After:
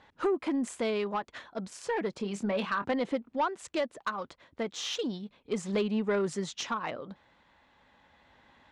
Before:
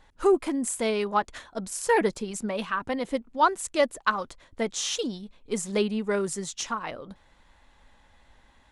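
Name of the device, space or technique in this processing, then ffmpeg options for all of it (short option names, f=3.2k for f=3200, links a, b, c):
AM radio: -filter_complex "[0:a]asettb=1/sr,asplit=3[a][b][c];[a]atrim=end=2.174[d];[b]atrim=start=2.17:end=2.93,asetpts=PTS-STARTPTS,afade=t=in:d=0.004:c=qsin,afade=t=out:st=0.756:d=0.004:c=qsin,asplit=2[e][f];[f]adelay=25,volume=-10dB[g];[e][g]amix=inputs=2:normalize=0,atrim=end_sample=33516[h];[c]atrim=start=2.926[i];[d][h]acrossfade=d=0.004:c1=hsin:c2=qsin[j];[j][i]acrossfade=d=0.004:c1=qsin:c2=hsin,highpass=110,lowpass=4.1k,acompressor=threshold=-26dB:ratio=5,asoftclip=type=tanh:threshold=-22.5dB,tremolo=f=0.33:d=0.37,volume=2.5dB"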